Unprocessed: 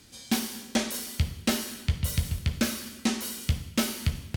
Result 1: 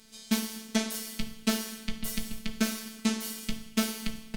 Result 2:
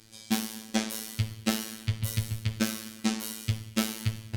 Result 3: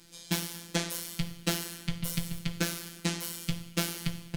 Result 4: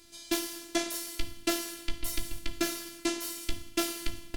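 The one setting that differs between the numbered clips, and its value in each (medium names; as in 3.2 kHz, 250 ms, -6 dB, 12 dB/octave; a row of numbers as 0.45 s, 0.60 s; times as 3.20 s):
robot voice, frequency: 220 Hz, 110 Hz, 170 Hz, 340 Hz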